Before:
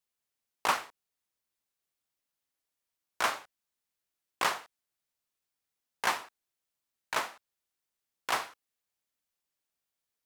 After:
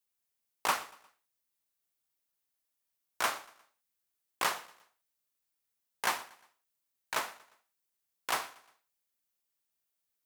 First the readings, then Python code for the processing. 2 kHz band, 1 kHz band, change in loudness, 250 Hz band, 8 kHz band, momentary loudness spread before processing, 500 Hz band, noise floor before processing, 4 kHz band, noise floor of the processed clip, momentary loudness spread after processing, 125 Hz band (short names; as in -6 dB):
-2.0 dB, -2.5 dB, -1.5 dB, -2.5 dB, +1.0 dB, 12 LU, -2.5 dB, under -85 dBFS, -1.5 dB, -84 dBFS, 12 LU, -2.5 dB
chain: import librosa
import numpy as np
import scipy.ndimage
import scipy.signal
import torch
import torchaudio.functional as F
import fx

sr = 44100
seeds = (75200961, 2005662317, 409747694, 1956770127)

y = fx.high_shelf(x, sr, hz=8900.0, db=8.5)
y = fx.echo_feedback(y, sr, ms=118, feedback_pct=44, wet_db=-21)
y = y * 10.0 ** (-2.5 / 20.0)